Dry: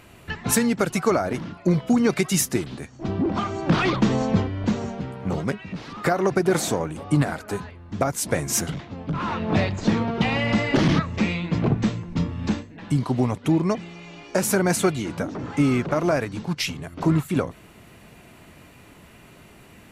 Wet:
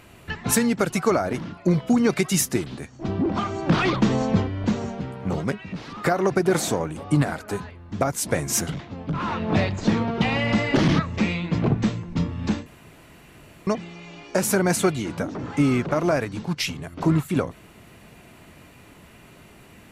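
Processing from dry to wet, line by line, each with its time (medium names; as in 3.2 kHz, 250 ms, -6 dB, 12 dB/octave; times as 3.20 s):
12.66–13.67 s: room tone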